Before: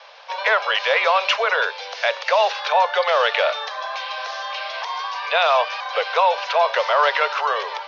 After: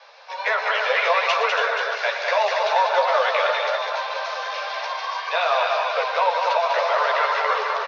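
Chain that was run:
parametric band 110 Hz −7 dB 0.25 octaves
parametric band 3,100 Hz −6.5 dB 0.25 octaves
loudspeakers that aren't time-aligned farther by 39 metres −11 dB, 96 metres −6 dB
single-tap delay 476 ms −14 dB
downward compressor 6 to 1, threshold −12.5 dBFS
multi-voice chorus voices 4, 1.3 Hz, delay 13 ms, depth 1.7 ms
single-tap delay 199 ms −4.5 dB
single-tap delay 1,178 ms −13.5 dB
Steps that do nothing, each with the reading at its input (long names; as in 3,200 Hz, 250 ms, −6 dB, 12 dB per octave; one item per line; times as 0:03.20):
parametric band 110 Hz: nothing at its input below 380 Hz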